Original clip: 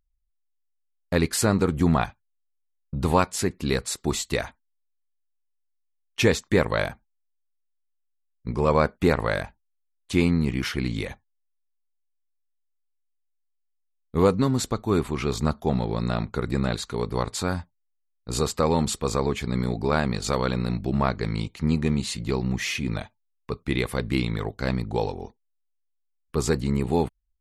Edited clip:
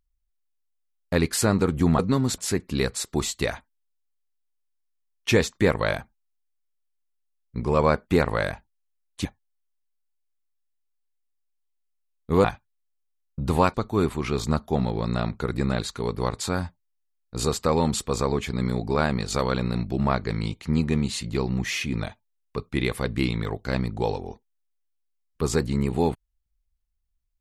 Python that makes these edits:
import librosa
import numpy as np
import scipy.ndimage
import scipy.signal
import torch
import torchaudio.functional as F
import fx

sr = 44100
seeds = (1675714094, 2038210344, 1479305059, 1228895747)

y = fx.edit(x, sr, fx.swap(start_s=1.99, length_s=1.3, other_s=14.29, other_length_s=0.39),
    fx.cut(start_s=10.16, length_s=0.94), tone=tone)